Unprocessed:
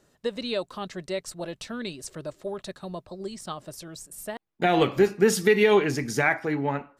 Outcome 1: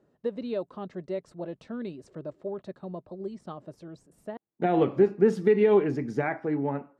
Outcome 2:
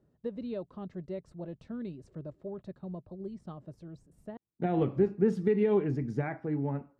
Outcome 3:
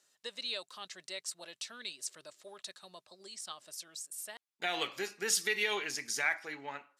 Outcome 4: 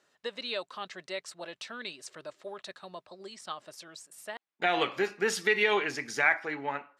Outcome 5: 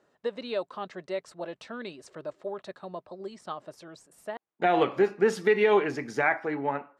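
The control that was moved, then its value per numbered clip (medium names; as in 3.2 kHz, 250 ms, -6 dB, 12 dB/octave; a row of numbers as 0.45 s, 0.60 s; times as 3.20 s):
band-pass filter, frequency: 290 Hz, 110 Hz, 6.5 kHz, 2.2 kHz, 860 Hz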